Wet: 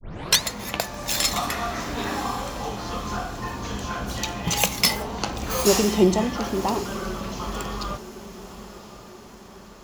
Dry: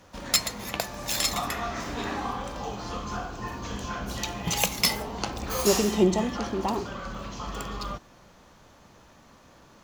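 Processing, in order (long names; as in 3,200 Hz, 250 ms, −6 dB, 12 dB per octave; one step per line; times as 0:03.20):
turntable start at the beginning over 0.43 s
on a send: feedback delay with all-pass diffusion 1,065 ms, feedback 50%, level −15 dB
on the sum: level +3.5 dB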